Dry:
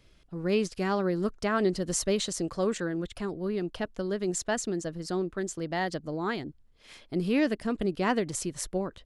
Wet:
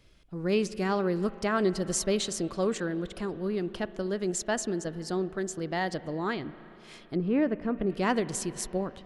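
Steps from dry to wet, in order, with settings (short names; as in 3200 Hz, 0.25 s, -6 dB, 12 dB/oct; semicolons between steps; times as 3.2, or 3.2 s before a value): spring tank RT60 3.7 s, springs 37/57 ms, chirp 75 ms, DRR 15 dB; 6.32–7.9 treble ducked by the level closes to 1500 Hz, closed at -25.5 dBFS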